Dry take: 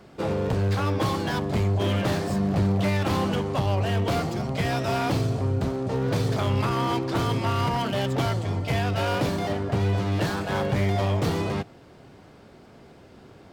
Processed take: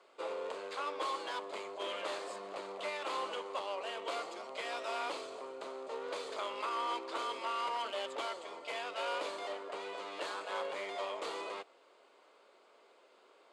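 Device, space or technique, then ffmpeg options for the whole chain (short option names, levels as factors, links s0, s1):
phone speaker on a table: -af "highpass=f=480:w=0.5412,highpass=f=480:w=1.3066,equalizer=f=750:t=q:w=4:g=-7,equalizer=f=1100:t=q:w=4:g=3,equalizer=f=1700:t=q:w=4:g=-6,equalizer=f=5600:t=q:w=4:g=-9,lowpass=f=8900:w=0.5412,lowpass=f=8900:w=1.3066,volume=0.422"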